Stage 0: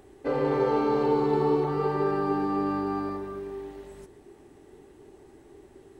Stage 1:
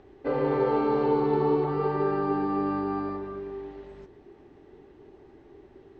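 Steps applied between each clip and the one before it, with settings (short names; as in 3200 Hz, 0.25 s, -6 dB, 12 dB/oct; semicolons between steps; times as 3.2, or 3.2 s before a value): Bessel low-pass 3500 Hz, order 8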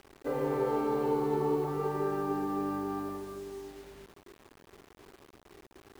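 median filter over 9 samples; bit-crush 8-bit; gain -5.5 dB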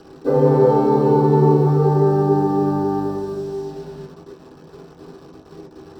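reverb RT60 0.20 s, pre-delay 3 ms, DRR -6 dB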